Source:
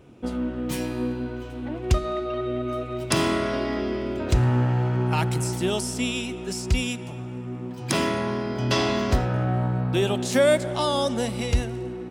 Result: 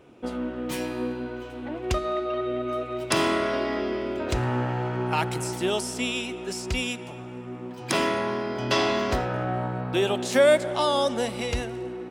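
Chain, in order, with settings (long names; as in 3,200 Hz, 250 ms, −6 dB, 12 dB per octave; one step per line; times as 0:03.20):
bass and treble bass −10 dB, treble −4 dB
level +1.5 dB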